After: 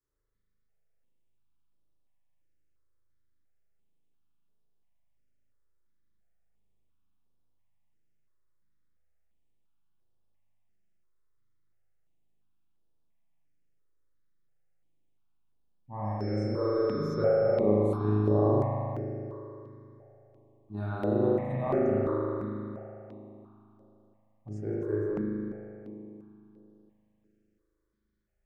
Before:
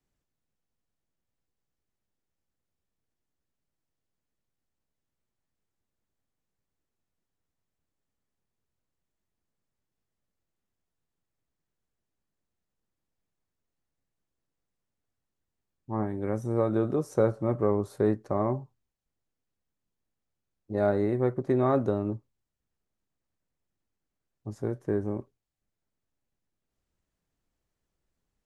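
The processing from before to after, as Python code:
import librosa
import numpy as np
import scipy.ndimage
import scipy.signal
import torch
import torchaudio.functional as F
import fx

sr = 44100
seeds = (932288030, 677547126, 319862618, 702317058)

y = fx.dmg_tone(x, sr, hz=5300.0, level_db=-46.0, at=(16.04, 17.59), fade=0.02)
y = fx.rev_spring(y, sr, rt60_s=3.1, pass_ms=(38,), chirp_ms=75, drr_db=-8.5)
y = fx.phaser_held(y, sr, hz=2.9, low_hz=740.0, high_hz=7200.0)
y = F.gain(torch.from_numpy(y), -6.5).numpy()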